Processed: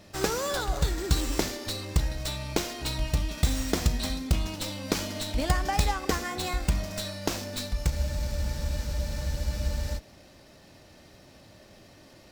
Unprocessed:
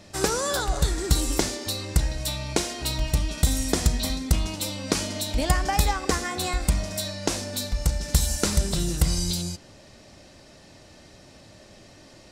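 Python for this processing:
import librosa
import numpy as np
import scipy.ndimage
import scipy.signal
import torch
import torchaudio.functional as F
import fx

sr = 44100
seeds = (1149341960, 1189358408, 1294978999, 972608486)

y = fx.spec_freeze(x, sr, seeds[0], at_s=7.91, hold_s=2.06)
y = fx.running_max(y, sr, window=3)
y = y * librosa.db_to_amplitude(-3.0)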